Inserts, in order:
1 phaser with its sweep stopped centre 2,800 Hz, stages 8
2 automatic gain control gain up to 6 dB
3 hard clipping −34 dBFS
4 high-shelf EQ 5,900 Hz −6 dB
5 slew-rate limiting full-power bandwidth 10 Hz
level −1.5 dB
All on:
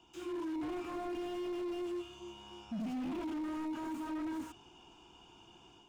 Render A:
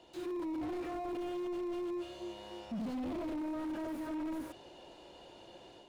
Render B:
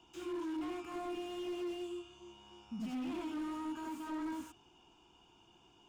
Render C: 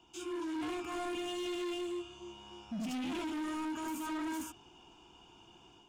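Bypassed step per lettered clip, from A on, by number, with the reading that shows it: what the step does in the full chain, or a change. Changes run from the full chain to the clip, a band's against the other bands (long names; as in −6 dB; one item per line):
1, 500 Hz band +1.5 dB
2, change in crest factor +2.0 dB
5, distortion level −6 dB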